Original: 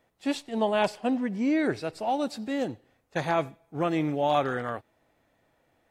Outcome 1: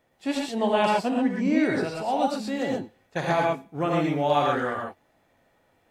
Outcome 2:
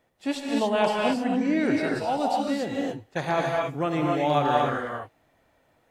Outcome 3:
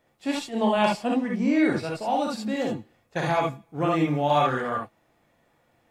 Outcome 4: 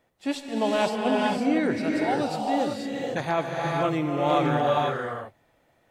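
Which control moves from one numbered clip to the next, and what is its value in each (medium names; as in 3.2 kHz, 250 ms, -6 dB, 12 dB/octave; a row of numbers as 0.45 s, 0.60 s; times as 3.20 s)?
gated-style reverb, gate: 150 ms, 300 ms, 90 ms, 530 ms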